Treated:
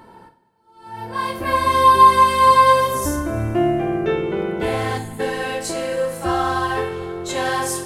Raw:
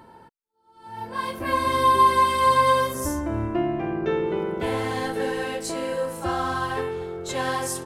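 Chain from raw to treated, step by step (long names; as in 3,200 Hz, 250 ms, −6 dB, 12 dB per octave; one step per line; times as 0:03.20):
gain on a spectral selection 0:04.98–0:05.20, 300–6,500 Hz −26 dB
coupled-rooms reverb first 0.43 s, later 2.5 s, from −15 dB, DRR 5 dB
level +3.5 dB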